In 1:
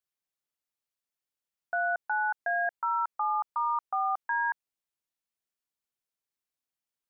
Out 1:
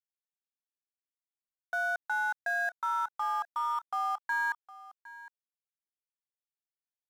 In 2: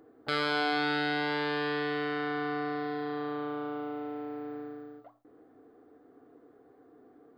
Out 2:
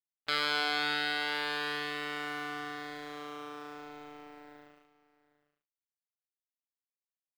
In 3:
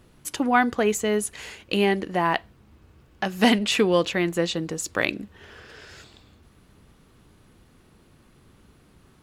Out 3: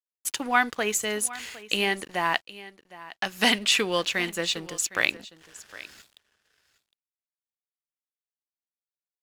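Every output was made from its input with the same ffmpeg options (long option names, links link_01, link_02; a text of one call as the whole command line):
ffmpeg -i in.wav -af "tiltshelf=frequency=930:gain=-7,aeval=exprs='sgn(val(0))*max(abs(val(0))-0.00631,0)':channel_layout=same,aecho=1:1:760:0.126,volume=-2.5dB" out.wav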